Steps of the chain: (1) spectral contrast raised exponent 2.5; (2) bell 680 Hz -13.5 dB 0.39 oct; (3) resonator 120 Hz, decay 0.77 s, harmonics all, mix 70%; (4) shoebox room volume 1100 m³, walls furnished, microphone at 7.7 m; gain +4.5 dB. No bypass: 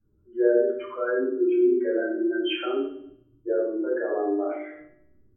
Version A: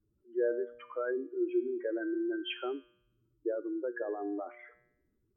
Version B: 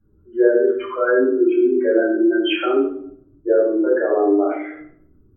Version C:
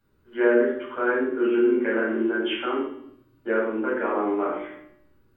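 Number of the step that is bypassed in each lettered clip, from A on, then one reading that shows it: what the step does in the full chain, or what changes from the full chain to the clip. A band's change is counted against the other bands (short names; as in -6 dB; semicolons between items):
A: 4, echo-to-direct 6.0 dB to none; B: 3, 1 kHz band +1.5 dB; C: 1, 500 Hz band -6.5 dB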